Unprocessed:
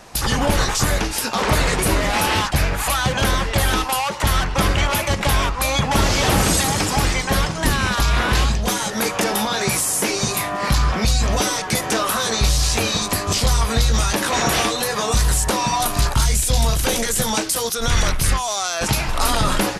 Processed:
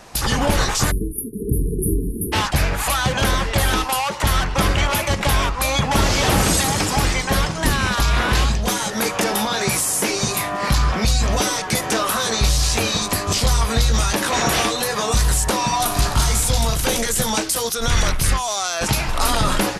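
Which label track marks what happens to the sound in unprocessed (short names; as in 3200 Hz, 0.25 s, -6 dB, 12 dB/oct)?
0.910000	2.330000	spectral delete 460–9400 Hz
15.770000	16.370000	reverb throw, RT60 2.3 s, DRR 4.5 dB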